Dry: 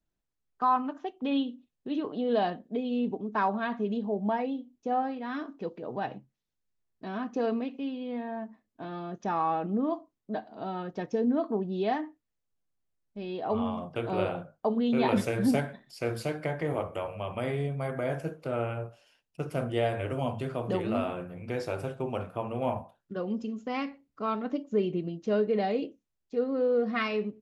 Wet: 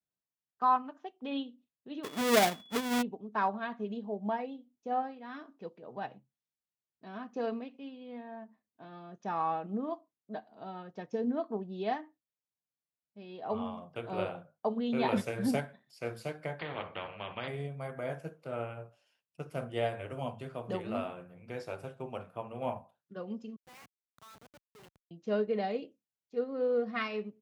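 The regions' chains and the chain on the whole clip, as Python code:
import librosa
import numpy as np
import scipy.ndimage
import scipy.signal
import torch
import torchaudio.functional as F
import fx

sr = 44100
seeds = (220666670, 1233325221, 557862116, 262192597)

y = fx.halfwave_hold(x, sr, at=(2.03, 3.01), fade=0.02)
y = fx.dmg_tone(y, sr, hz=3400.0, level_db=-44.0, at=(2.03, 3.01), fade=0.02)
y = fx.chain(y, sr, fx.steep_lowpass(hz=4400.0, slope=96),
    fx.spectral_comp(ratio=2.0), at=(16.59, 17.48))
y = fx.chain(y, sr, fx.highpass(hz=1300.0, slope=12),
    fx.schmitt(flips_db=-44.0), at=(23.56, 25.11))
y = scipy.signal.sosfilt(scipy.signal.butter(2, 110.0, 'highpass', fs=sr, output='sos'), y)
y = fx.peak_eq(y, sr, hz=310.0, db=-4.5, octaves=0.78)
y = fx.upward_expand(y, sr, threshold_db=-40.0, expansion=1.5)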